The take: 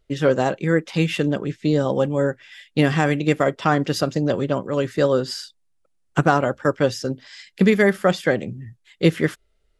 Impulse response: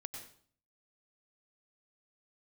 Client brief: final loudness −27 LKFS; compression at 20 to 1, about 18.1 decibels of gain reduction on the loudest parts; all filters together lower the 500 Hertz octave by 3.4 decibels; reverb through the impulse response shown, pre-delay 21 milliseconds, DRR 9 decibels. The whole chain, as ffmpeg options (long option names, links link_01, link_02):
-filter_complex "[0:a]equalizer=frequency=500:width_type=o:gain=-4,acompressor=threshold=-30dB:ratio=20,asplit=2[link_01][link_02];[1:a]atrim=start_sample=2205,adelay=21[link_03];[link_02][link_03]afir=irnorm=-1:irlink=0,volume=-6dB[link_04];[link_01][link_04]amix=inputs=2:normalize=0,volume=9dB"